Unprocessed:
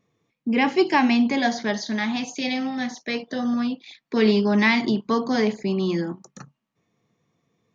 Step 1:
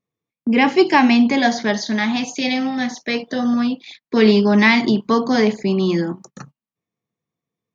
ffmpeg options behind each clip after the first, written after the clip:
-af "agate=range=0.1:threshold=0.00501:ratio=16:detection=peak,volume=1.88"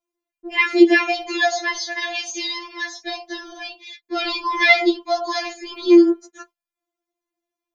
-af "afftfilt=real='re*4*eq(mod(b,16),0)':imag='im*4*eq(mod(b,16),0)':win_size=2048:overlap=0.75,volume=1.41"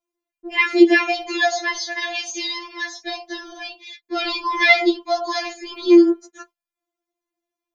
-af anull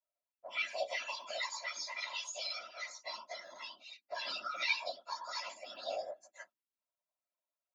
-filter_complex "[0:a]afreqshift=290,acrossover=split=270|3000[s0][s1][s2];[s1]acompressor=threshold=0.0398:ratio=4[s3];[s0][s3][s2]amix=inputs=3:normalize=0,afftfilt=real='hypot(re,im)*cos(2*PI*random(0))':imag='hypot(re,im)*sin(2*PI*random(1))':win_size=512:overlap=0.75,volume=0.422"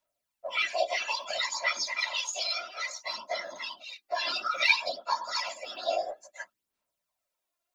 -af "aphaser=in_gain=1:out_gain=1:delay=2.9:decay=0.49:speed=0.59:type=sinusoidal,volume=2.51"

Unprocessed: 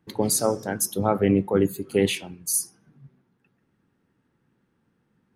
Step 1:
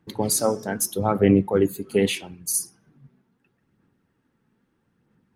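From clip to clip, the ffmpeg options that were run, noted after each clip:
-af "aphaser=in_gain=1:out_gain=1:delay=4.7:decay=0.33:speed=0.78:type=sinusoidal"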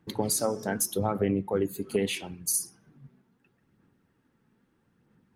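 -af "acompressor=threshold=0.0631:ratio=4"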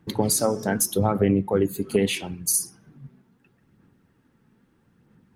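-af "bass=f=250:g=3,treble=f=4000:g=0,volume=1.78"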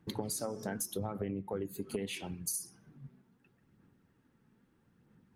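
-af "acompressor=threshold=0.0447:ratio=5,volume=0.447"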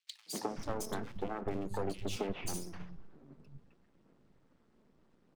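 -filter_complex "[0:a]highpass=f=130:w=0.5412,highpass=f=130:w=1.3066,equalizer=f=570:t=q:w=4:g=-4,equalizer=f=1600:t=q:w=4:g=-7,equalizer=f=6500:t=q:w=4:g=-4,lowpass=f=7700:w=0.5412,lowpass=f=7700:w=1.3066,aeval=exprs='max(val(0),0)':c=same,acrossover=split=170|2600[s0][s1][s2];[s1]adelay=260[s3];[s0]adelay=500[s4];[s4][s3][s2]amix=inputs=3:normalize=0,volume=2.11"

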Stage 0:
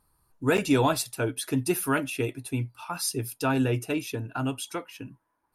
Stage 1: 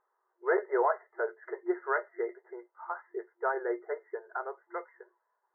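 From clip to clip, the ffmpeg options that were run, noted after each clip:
-af "afftfilt=real='re*between(b*sr/4096,350,2100)':imag='im*between(b*sr/4096,350,2100)':win_size=4096:overlap=0.75,volume=0.794"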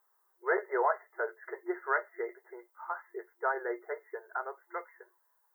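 -af "aemphasis=mode=production:type=riaa"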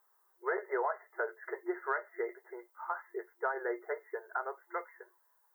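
-af "acompressor=threshold=0.0282:ratio=6,volume=1.19"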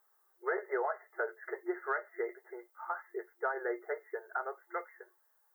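-af "asuperstop=centerf=990:order=4:qfactor=7.9"

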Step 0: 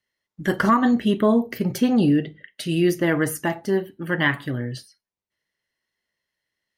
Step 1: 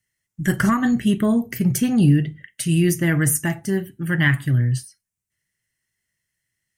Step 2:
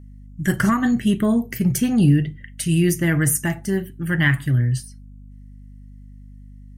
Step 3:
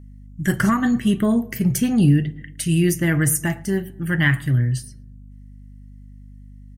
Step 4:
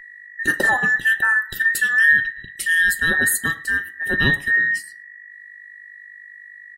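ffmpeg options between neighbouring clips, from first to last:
-af "equalizer=f=125:t=o:w=1:g=7,equalizer=f=250:t=o:w=1:g=-6,equalizer=f=500:t=o:w=1:g=-12,equalizer=f=1000:t=o:w=1:g=-11,equalizer=f=4000:t=o:w=1:g=-12,equalizer=f=8000:t=o:w=1:g=8,volume=2.24"
-af "aeval=exprs='val(0)+0.01*(sin(2*PI*50*n/s)+sin(2*PI*2*50*n/s)/2+sin(2*PI*3*50*n/s)/3+sin(2*PI*4*50*n/s)/4+sin(2*PI*5*50*n/s)/5)':c=same"
-filter_complex "[0:a]asplit=2[s0][s1];[s1]adelay=111,lowpass=f=1800:p=1,volume=0.0891,asplit=2[s2][s3];[s3]adelay=111,lowpass=f=1800:p=1,volume=0.54,asplit=2[s4][s5];[s5]adelay=111,lowpass=f=1800:p=1,volume=0.54,asplit=2[s6][s7];[s7]adelay=111,lowpass=f=1800:p=1,volume=0.54[s8];[s0][s2][s4][s6][s8]amix=inputs=5:normalize=0"
-af "afftfilt=real='real(if(between(b,1,1012),(2*floor((b-1)/92)+1)*92-b,b),0)':imag='imag(if(between(b,1,1012),(2*floor((b-1)/92)+1)*92-b,b),0)*if(between(b,1,1012),-1,1)':win_size=2048:overlap=0.75"

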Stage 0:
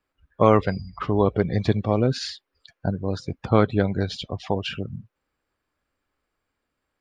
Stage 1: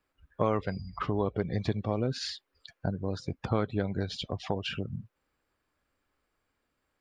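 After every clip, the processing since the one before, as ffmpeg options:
-af "acompressor=threshold=0.0251:ratio=2"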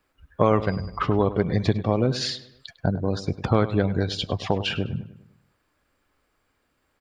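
-filter_complex "[0:a]asplit=2[s0][s1];[s1]adelay=101,lowpass=f=3100:p=1,volume=0.2,asplit=2[s2][s3];[s3]adelay=101,lowpass=f=3100:p=1,volume=0.49,asplit=2[s4][s5];[s5]adelay=101,lowpass=f=3100:p=1,volume=0.49,asplit=2[s6][s7];[s7]adelay=101,lowpass=f=3100:p=1,volume=0.49,asplit=2[s8][s9];[s9]adelay=101,lowpass=f=3100:p=1,volume=0.49[s10];[s0][s2][s4][s6][s8][s10]amix=inputs=6:normalize=0,volume=2.51"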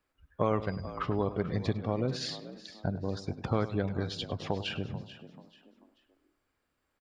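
-filter_complex "[0:a]asplit=4[s0][s1][s2][s3];[s1]adelay=437,afreqshift=58,volume=0.178[s4];[s2]adelay=874,afreqshift=116,volume=0.0569[s5];[s3]adelay=1311,afreqshift=174,volume=0.0182[s6];[s0][s4][s5][s6]amix=inputs=4:normalize=0,volume=0.355"

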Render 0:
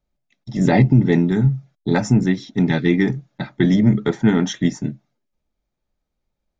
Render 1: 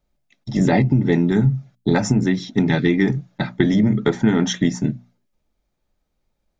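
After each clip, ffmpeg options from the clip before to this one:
-af "acompressor=threshold=0.141:ratio=6,bandreject=f=60:t=h:w=6,bandreject=f=120:t=h:w=6,bandreject=f=180:t=h:w=6,bandreject=f=240:t=h:w=6,volume=1.78"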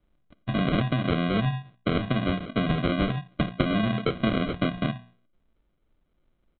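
-filter_complex "[0:a]acrossover=split=130|1300[s0][s1][s2];[s0]acompressor=threshold=0.0141:ratio=4[s3];[s1]acompressor=threshold=0.0355:ratio=4[s4];[s2]acompressor=threshold=0.0398:ratio=4[s5];[s3][s4][s5]amix=inputs=3:normalize=0,aresample=8000,acrusher=samples=9:mix=1:aa=0.000001,aresample=44100,volume=1.33"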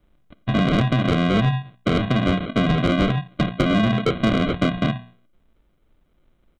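-af "asoftclip=type=tanh:threshold=0.106,volume=2.51"

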